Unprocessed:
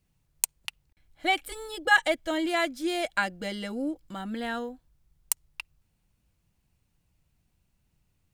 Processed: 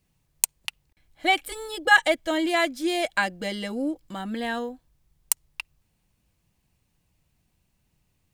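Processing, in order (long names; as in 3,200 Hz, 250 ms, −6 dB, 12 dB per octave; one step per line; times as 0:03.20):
low-shelf EQ 120 Hz −5 dB
notch filter 1,400 Hz, Q 14
level +4 dB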